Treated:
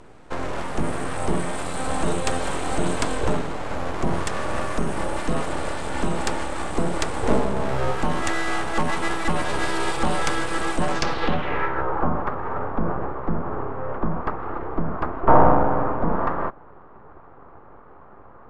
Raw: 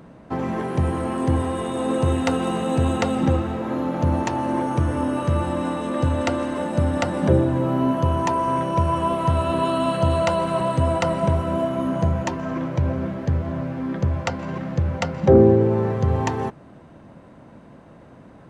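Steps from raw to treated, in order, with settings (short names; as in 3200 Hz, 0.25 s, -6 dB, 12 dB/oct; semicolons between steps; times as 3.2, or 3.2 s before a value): full-wave rectifier; low-pass sweep 8600 Hz -> 1200 Hz, 10.82–11.91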